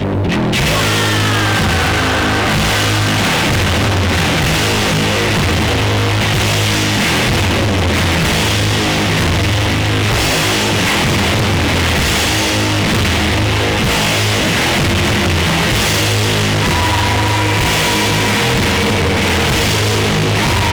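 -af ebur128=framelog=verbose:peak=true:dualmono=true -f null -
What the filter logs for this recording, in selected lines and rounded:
Integrated loudness:
  I:         -10.0 LUFS
  Threshold: -20.0 LUFS
Loudness range:
  LRA:         0.4 LU
  Threshold: -30.0 LUFS
  LRA low:   -10.2 LUFS
  LRA high:   -9.8 LUFS
True peak:
  Peak:      -10.0 dBFS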